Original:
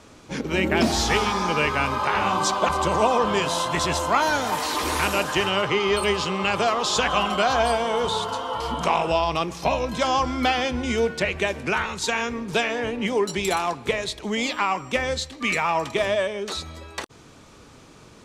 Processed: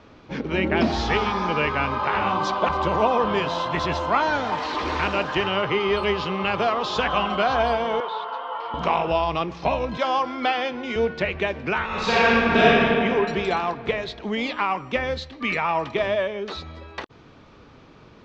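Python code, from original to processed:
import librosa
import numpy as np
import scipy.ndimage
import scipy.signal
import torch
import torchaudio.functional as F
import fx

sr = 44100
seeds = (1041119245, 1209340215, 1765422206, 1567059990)

y = fx.bandpass_edges(x, sr, low_hz=640.0, high_hz=2600.0, at=(8.0, 8.74))
y = fx.highpass(y, sr, hz=310.0, slope=12, at=(9.97, 10.96))
y = fx.reverb_throw(y, sr, start_s=11.86, length_s=0.8, rt60_s=2.9, drr_db=-9.5)
y = scipy.signal.sosfilt(scipy.signal.bessel(6, 3200.0, 'lowpass', norm='mag', fs=sr, output='sos'), y)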